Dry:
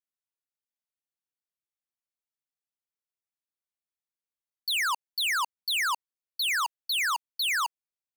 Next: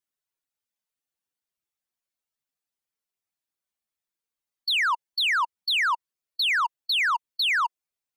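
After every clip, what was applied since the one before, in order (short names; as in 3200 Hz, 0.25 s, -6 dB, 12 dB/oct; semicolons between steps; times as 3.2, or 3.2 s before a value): spectral contrast raised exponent 1.8; gain +4 dB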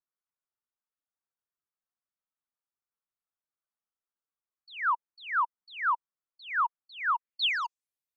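low-pass sweep 1300 Hz -> 14000 Hz, 7.1–7.97; gain -8.5 dB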